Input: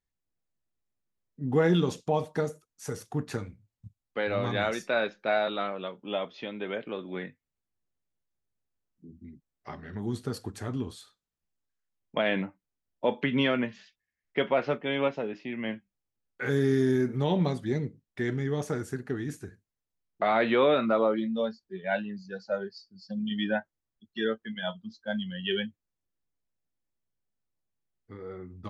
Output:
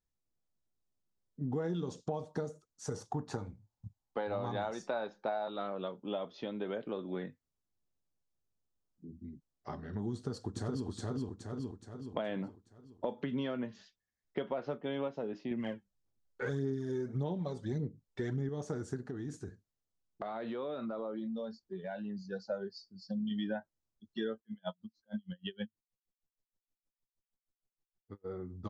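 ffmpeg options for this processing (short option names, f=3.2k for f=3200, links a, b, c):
-filter_complex "[0:a]asettb=1/sr,asplit=3[a][b][c];[a]atrim=end=2.954[d];[b]atrim=start=2.95:end=5.51,asetpts=PTS-STARTPTS,afade=t=in:d=0.004:c=qsin,afade=t=out:st=2.556:d=0.004:c=qsin,equalizer=f=860:t=o:w=0.55:g=10.5[e];[c]atrim=start=5.506[f];[d][e]acrossfade=d=0.004:c1=hsin:c2=qsin[g];[g][f]acrossfade=d=0.004:c1=qsin:c2=hsin,asplit=2[h][i];[i]afade=t=in:st=10.14:d=0.01,afade=t=out:st=10.87:d=0.01,aecho=0:1:420|840|1260|1680|2100|2520|2940:0.891251|0.445625|0.222813|0.111406|0.0557032|0.0278516|0.0139258[j];[h][j]amix=inputs=2:normalize=0,asettb=1/sr,asplit=3[k][l][m];[k]atrim=end=15.514[n];[l]atrim=start=15.51:end=18.49,asetpts=PTS-STARTPTS,afade=t=in:d=0.004:c=qsin,afade=t=out:st=2.976:d=0.004:c=qsin,aphaser=in_gain=1:out_gain=1:delay=2.3:decay=0.54:speed=1.7:type=sinusoidal[o];[m]atrim=start=18.486[p];[n][o]acrossfade=d=0.004:c1=hsin:c2=qsin[q];[q][p]acrossfade=d=0.004:c1=qsin:c2=hsin,asettb=1/sr,asplit=3[r][s][t];[r]atrim=end=19.064[u];[s]atrim=start=19.06:end=22.24,asetpts=PTS-STARTPTS,afade=t=in:d=0.004:c=qsin,afade=t=out:st=3.176:d=0.004:c=qsin,acompressor=threshold=-36dB:ratio=5:attack=3.2:release=140:knee=1:detection=peak[v];[t]atrim=start=22.236[w];[u][v]acrossfade=d=0.004:c1=hsin:c2=qsin[x];[x][w]acrossfade=d=0.004:c1=qsin:c2=hsin,asplit=3[y][z][aa];[y]afade=t=out:st=24.4:d=0.02[ab];[z]aeval=exprs='val(0)*pow(10,-38*(0.5-0.5*cos(2*PI*6.4*n/s))/20)':c=same,afade=t=in:st=24.4:d=0.02,afade=t=out:st=28.24:d=0.02[ac];[aa]afade=t=in:st=28.24:d=0.02[ad];[ab][ac][ad]amix=inputs=3:normalize=0,lowpass=f=7.7k:w=0.5412,lowpass=f=7.7k:w=1.3066,equalizer=f=2.3k:w=1.3:g=-12,acompressor=threshold=-33dB:ratio=6"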